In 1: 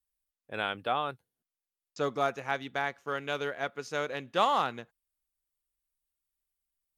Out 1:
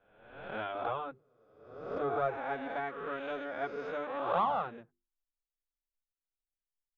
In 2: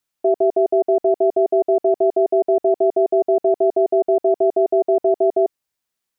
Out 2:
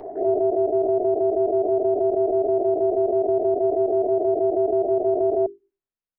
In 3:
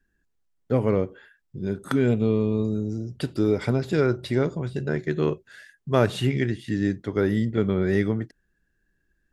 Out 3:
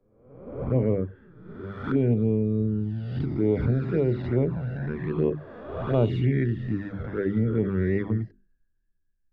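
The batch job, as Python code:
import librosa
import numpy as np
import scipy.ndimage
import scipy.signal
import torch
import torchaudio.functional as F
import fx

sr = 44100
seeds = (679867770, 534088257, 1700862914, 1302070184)

p1 = fx.spec_swells(x, sr, rise_s=1.28)
p2 = fx.low_shelf(p1, sr, hz=64.0, db=11.5)
p3 = fx.hum_notches(p2, sr, base_hz=50, count=8)
p4 = fx.rider(p3, sr, range_db=4, speed_s=0.5)
p5 = p3 + (p4 * librosa.db_to_amplitude(1.0))
p6 = 10.0 ** (-1.5 / 20.0) * np.tanh(p5 / 10.0 ** (-1.5 / 20.0))
p7 = fx.env_flanger(p6, sr, rest_ms=10.6, full_db=-9.5)
p8 = fx.spacing_loss(p7, sr, db_at_10k=42)
p9 = fx.band_widen(p8, sr, depth_pct=40)
y = p9 * librosa.db_to_amplitude(-6.5)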